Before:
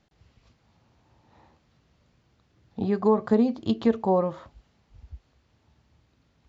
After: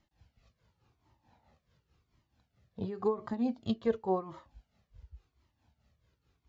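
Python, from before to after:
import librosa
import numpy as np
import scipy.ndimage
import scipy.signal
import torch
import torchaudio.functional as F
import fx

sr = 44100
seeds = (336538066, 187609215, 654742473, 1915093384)

y = x * (1.0 - 0.71 / 2.0 + 0.71 / 2.0 * np.cos(2.0 * np.pi * 4.6 * (np.arange(len(x)) / sr)))
y = fx.comb_cascade(y, sr, direction='falling', hz=0.92)
y = y * 10.0 ** (-1.5 / 20.0)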